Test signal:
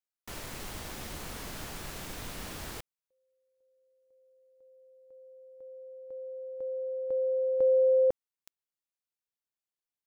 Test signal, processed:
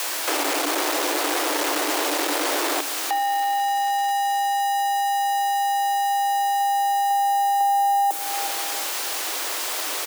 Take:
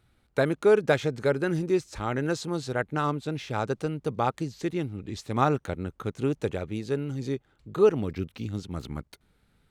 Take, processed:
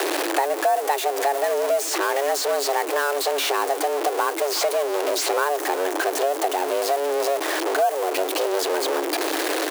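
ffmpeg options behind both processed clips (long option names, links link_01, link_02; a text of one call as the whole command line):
ffmpeg -i in.wav -filter_complex "[0:a]aeval=exprs='val(0)+0.5*0.075*sgn(val(0))':channel_layout=same,equalizer=frequency=480:width_type=o:width=2.2:gain=4,aecho=1:1:365|730|1095:0.0841|0.0353|0.0148,afreqshift=280,acrossover=split=380|7500[link_01][link_02][link_03];[link_01]acompressor=threshold=-43dB:ratio=4[link_04];[link_02]acompressor=threshold=-28dB:ratio=4[link_05];[link_03]acompressor=threshold=-35dB:ratio=4[link_06];[link_04][link_05][link_06]amix=inputs=3:normalize=0,volume=6.5dB" out.wav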